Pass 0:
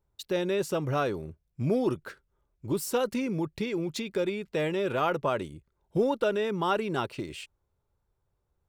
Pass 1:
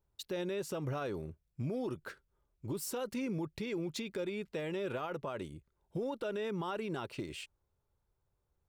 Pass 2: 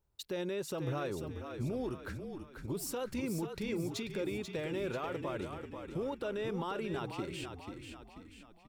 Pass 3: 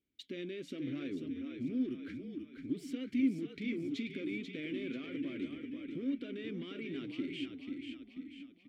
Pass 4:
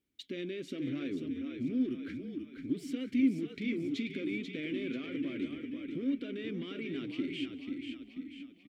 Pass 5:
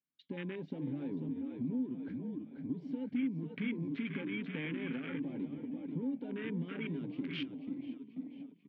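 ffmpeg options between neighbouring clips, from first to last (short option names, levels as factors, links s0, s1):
-af "alimiter=level_in=1.26:limit=0.0631:level=0:latency=1:release=114,volume=0.794,volume=0.668"
-filter_complex "[0:a]asplit=7[s0][s1][s2][s3][s4][s5][s6];[s1]adelay=488,afreqshift=-41,volume=0.447[s7];[s2]adelay=976,afreqshift=-82,volume=0.214[s8];[s3]adelay=1464,afreqshift=-123,volume=0.102[s9];[s4]adelay=1952,afreqshift=-164,volume=0.0495[s10];[s5]adelay=2440,afreqshift=-205,volume=0.0237[s11];[s6]adelay=2928,afreqshift=-246,volume=0.0114[s12];[s0][s7][s8][s9][s10][s11][s12]amix=inputs=7:normalize=0"
-filter_complex "[0:a]asoftclip=type=tanh:threshold=0.0237,flanger=delay=2.9:depth=6.5:regen=-79:speed=0.63:shape=triangular,asplit=3[s0][s1][s2];[s0]bandpass=f=270:t=q:w=8,volume=1[s3];[s1]bandpass=f=2290:t=q:w=8,volume=0.501[s4];[s2]bandpass=f=3010:t=q:w=8,volume=0.355[s5];[s3][s4][s5]amix=inputs=3:normalize=0,volume=7.08"
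-af "aecho=1:1:184:0.075,volume=1.41"
-af "afwtdn=0.00562,acompressor=threshold=0.0178:ratio=2.5,highpass=120,equalizer=f=160:t=q:w=4:g=9,equalizer=f=350:t=q:w=4:g=-9,equalizer=f=1100:t=q:w=4:g=9,equalizer=f=1600:t=q:w=4:g=7,lowpass=f=4500:w=0.5412,lowpass=f=4500:w=1.3066,volume=1.19"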